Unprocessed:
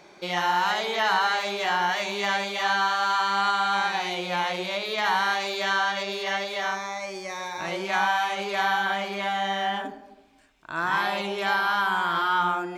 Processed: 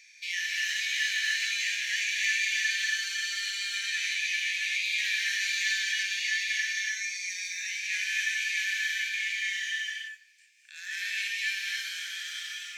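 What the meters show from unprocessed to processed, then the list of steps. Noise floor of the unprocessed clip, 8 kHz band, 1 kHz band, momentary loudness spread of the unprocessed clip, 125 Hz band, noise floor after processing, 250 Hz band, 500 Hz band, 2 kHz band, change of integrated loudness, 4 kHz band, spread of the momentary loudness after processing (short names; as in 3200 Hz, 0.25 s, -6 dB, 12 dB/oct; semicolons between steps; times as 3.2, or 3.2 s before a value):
-51 dBFS, +8.0 dB, under -35 dB, 7 LU, under -40 dB, -55 dBFS, under -40 dB, under -40 dB, -1.0 dB, -3.0 dB, -0.5 dB, 8 LU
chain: in parallel at -11.5 dB: wavefolder -27 dBFS; on the sum: rippled Chebyshev high-pass 1700 Hz, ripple 9 dB; non-linear reverb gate 0.31 s rising, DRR 0 dB; gain +3.5 dB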